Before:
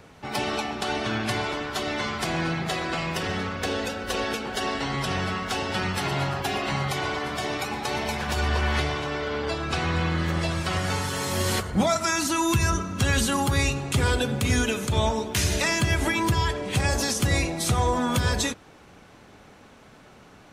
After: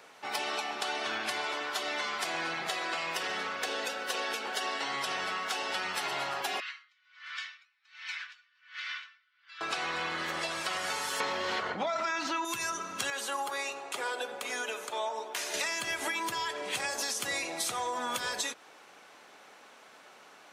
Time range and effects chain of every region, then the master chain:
0:06.60–0:09.61: Butterworth high-pass 1,400 Hz + high-frequency loss of the air 170 metres + tremolo with a sine in dB 1.3 Hz, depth 35 dB
0:11.20–0:12.45: high-frequency loss of the air 220 metres + envelope flattener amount 100%
0:13.10–0:15.54: high-pass filter 700 Hz + tilt shelving filter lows +9.5 dB, about 900 Hz
whole clip: Bessel high-pass filter 690 Hz, order 2; downward compressor, threshold −30 dBFS

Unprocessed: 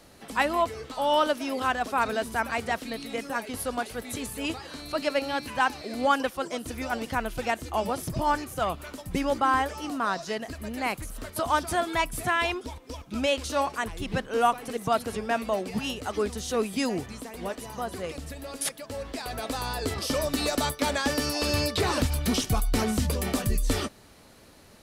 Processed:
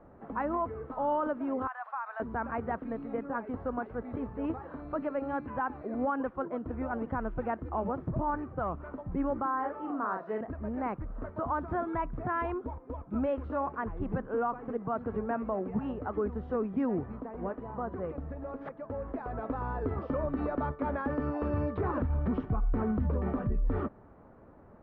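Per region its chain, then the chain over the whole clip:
0:01.67–0:02.20: Butterworth high-pass 810 Hz + downward compressor 5 to 1, threshold −28 dBFS
0:09.46–0:10.41: high-pass filter 280 Hz + double-tracking delay 42 ms −4.5 dB
whole clip: dynamic equaliser 690 Hz, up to −5 dB, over −38 dBFS, Q 1.5; low-pass filter 1,300 Hz 24 dB per octave; brickwall limiter −22.5 dBFS

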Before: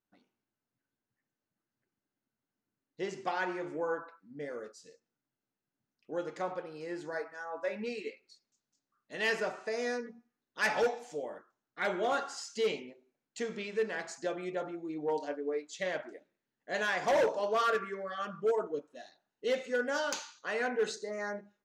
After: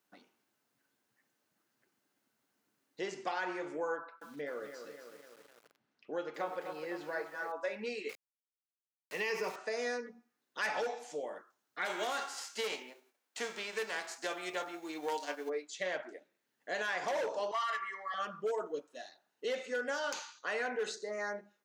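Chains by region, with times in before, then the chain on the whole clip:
0:03.96–0:07.52: low-pass filter 3,800 Hz + feedback echo at a low word length 253 ms, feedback 55%, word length 10 bits, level −9 dB
0:08.09–0:09.56: EQ curve with evenly spaced ripples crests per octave 0.82, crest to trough 12 dB + centre clipping without the shift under −45.5 dBFS
0:11.85–0:15.48: spectral envelope flattened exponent 0.6 + high-pass filter 330 Hz
0:17.51–0:18.14: high-pass filter 840 Hz + high-shelf EQ 7,300 Hz −9.5 dB + comb filter 1 ms, depth 99%
whole clip: high-pass filter 410 Hz 6 dB per octave; brickwall limiter −26 dBFS; multiband upward and downward compressor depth 40%

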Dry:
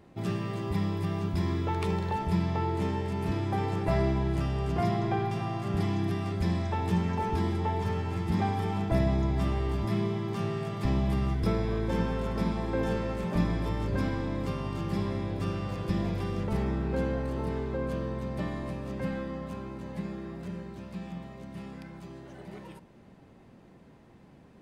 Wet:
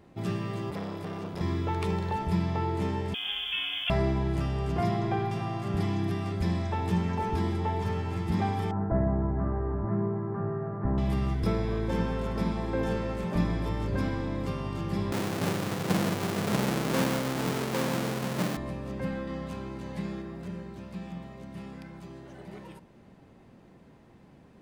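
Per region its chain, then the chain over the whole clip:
0:00.70–0:01.41: high-pass filter 150 Hz + saturating transformer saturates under 790 Hz
0:03.14–0:03.90: low-shelf EQ 210 Hz −8 dB + voice inversion scrambler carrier 3,400 Hz + bit-depth reduction 10 bits, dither none
0:08.71–0:10.98: elliptic low-pass filter 1,600 Hz, stop band 70 dB + double-tracking delay 20 ms −13 dB
0:15.12–0:18.57: each half-wave held at its own peak + high-pass filter 130 Hz 24 dB per octave
0:19.27–0:20.22: parametric band 4,400 Hz +5 dB 3 octaves + double-tracking delay 30 ms −13 dB
whole clip: no processing

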